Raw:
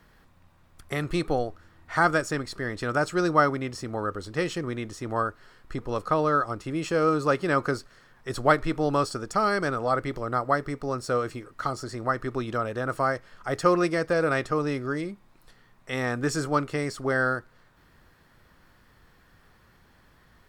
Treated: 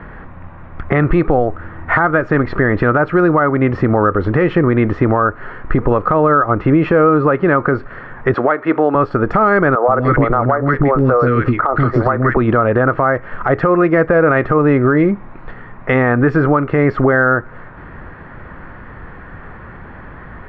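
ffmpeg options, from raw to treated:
-filter_complex "[0:a]asettb=1/sr,asplit=3[s0][s1][s2];[s0]atrim=end=8.344[s3];[s1]atrim=start=8.34:end=8.95,asetpts=PTS-STARTPTS,afade=t=in:d=0.004:c=qsin,afade=t=out:st=0.606:d=0.004:c=qsin,highpass=320,lowpass=7600[s4];[s2]atrim=start=8.946[s5];[s3][s4]acrossfade=d=0.004:c1=hsin:c2=qsin[s6];[s6][s5]acrossfade=d=0.004:c1=qsin:c2=hsin,asettb=1/sr,asplit=3[s7][s8][s9];[s7]atrim=end=9.754[s10];[s8]atrim=start=9.75:end=12.37,asetpts=PTS-STARTPTS,afade=t=in:d=0.004:c=qsin,afade=t=out:st=2.616:d=0.004:c=qsin,acrossover=split=370|1600[s11][s12][s13];[s11]adelay=130[s14];[s13]adelay=170[s15];[s14][s12][s15]amix=inputs=3:normalize=0,atrim=end_sample=115542[s16];[s9]atrim=start=12.366[s17];[s10][s16]acrossfade=d=0.004:c1=hsin:c2=qsin[s18];[s18][s17]acrossfade=d=0.004:c1=qsin:c2=hsin,lowpass=f=2000:w=0.5412,lowpass=f=2000:w=1.3066,acompressor=threshold=0.0251:ratio=10,alimiter=level_in=23.7:limit=0.891:release=50:level=0:latency=1,volume=0.75"

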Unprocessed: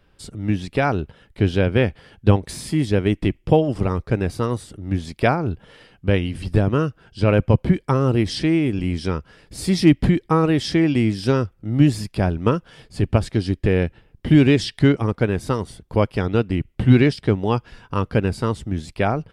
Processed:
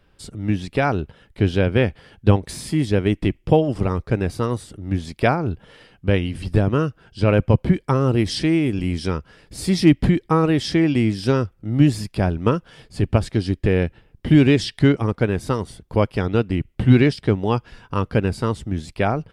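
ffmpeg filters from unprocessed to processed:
-filter_complex "[0:a]asettb=1/sr,asplit=3[s0][s1][s2];[s0]atrim=end=8.184[s3];[s1]atrim=start=8.18:end=9.17,asetpts=PTS-STARTPTS,afade=t=in:d=0.004:c=qsin,afade=t=out:st=0.986:d=0.004:c=qsin,highshelf=f=6200:g=5[s4];[s2]atrim=start=9.166[s5];[s3][s4]acrossfade=d=0.004:c1=hsin:c2=qsin[s6];[s6][s5]acrossfade=d=0.004:c1=qsin:c2=hsin"

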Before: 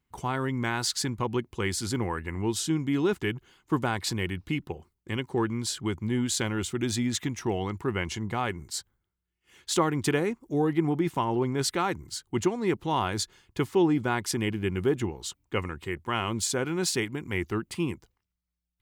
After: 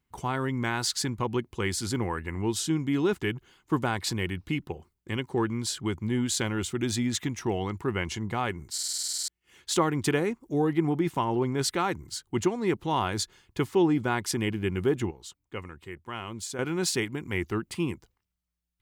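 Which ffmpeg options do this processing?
-filter_complex "[0:a]asplit=14[s0][s1][s2][s3][s4][s5][s6][s7][s8][s9][s10][s11][s12][s13];[s0]atrim=end=8.782[s14];[s1]atrim=start=8.728:end=8.782[s15];[s2]atrim=start=8.728:end=8.782[s16];[s3]atrim=start=8.728:end=8.782[s17];[s4]atrim=start=8.728:end=8.782[s18];[s5]atrim=start=8.728:end=8.782[s19];[s6]atrim=start=8.728:end=8.782[s20];[s7]atrim=start=8.728:end=8.782[s21];[s8]atrim=start=8.728:end=8.782[s22];[s9]atrim=start=8.728:end=8.782[s23];[s10]atrim=start=8.728:end=8.782[s24];[s11]atrim=start=9.278:end=15.112[s25];[s12]atrim=start=15.108:end=16.592,asetpts=PTS-STARTPTS,volume=0.398[s26];[s13]atrim=start=16.588[s27];[s14][s15]acrossfade=d=0.004:c1=hsin:c2=hsin[s28];[s28][s16]acrossfade=d=0.004:c1=hsin:c2=hsin[s29];[s29][s17]acrossfade=d=0.004:c1=hsin:c2=hsin[s30];[s30][s18]acrossfade=d=0.004:c1=hsin:c2=hsin[s31];[s31][s19]acrossfade=d=0.004:c1=hsin:c2=hsin[s32];[s32][s20]acrossfade=d=0.004:c1=hsin:c2=hsin[s33];[s33][s21]acrossfade=d=0.004:c1=hsin:c2=hsin[s34];[s34][s22]acrossfade=d=0.004:c1=hsin:c2=hsin[s35];[s35][s23]acrossfade=d=0.004:c1=hsin:c2=hsin[s36];[s36][s24]acrossfade=d=0.004:c1=hsin:c2=hsin[s37];[s37][s25]acrossfade=d=0.004:c1=hsin:c2=hsin[s38];[s38][s26]acrossfade=d=0.004:c1=hsin:c2=hsin[s39];[s39][s27]acrossfade=d=0.004:c1=hsin:c2=hsin"

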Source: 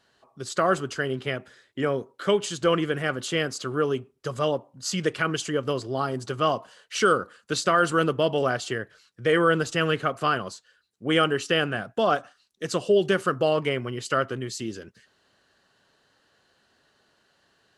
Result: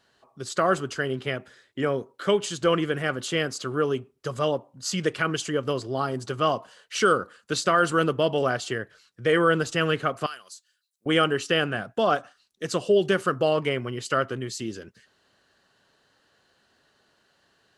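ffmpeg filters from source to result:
-filter_complex "[0:a]asettb=1/sr,asplit=3[s0][s1][s2];[s0]atrim=end=10.264[s3];[s1]atrim=start=10.26:end=11.06,asetpts=PTS-STARTPTS,afade=t=in:d=0.004:c=qsin,afade=t=out:st=0.796:d=0.004:c=qsin,aderivative[s4];[s2]atrim=start=11.056[s5];[s3][s4]acrossfade=d=0.004:c1=hsin:c2=qsin[s6];[s6][s5]acrossfade=d=0.004:c1=qsin:c2=hsin"

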